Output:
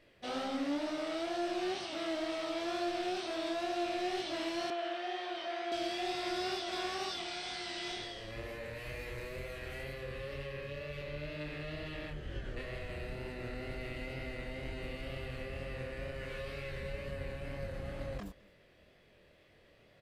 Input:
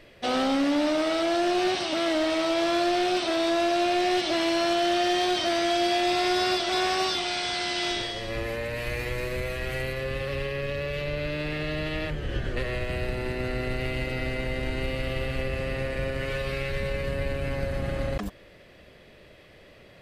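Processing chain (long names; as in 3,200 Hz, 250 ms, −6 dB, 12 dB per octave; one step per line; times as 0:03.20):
chorus effect 2.1 Hz, delay 20 ms, depth 7.9 ms
0:04.70–0:05.72: three-way crossover with the lows and the highs turned down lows −19 dB, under 350 Hz, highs −16 dB, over 3,500 Hz
single-tap delay 211 ms −24 dB
level −9 dB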